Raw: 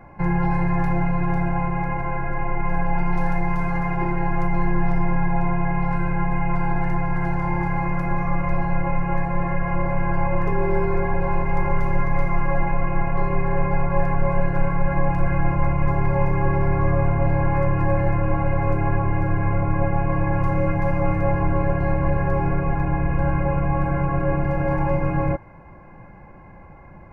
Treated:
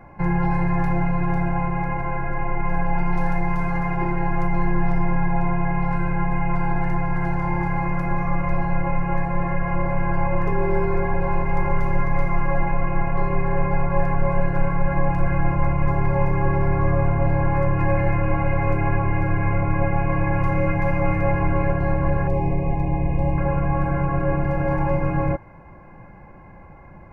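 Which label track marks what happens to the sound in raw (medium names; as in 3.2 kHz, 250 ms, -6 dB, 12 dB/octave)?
17.790000	21.720000	peaking EQ 2.3 kHz +5.5 dB
22.270000	23.380000	Butterworth band-stop 1.4 kHz, Q 1.3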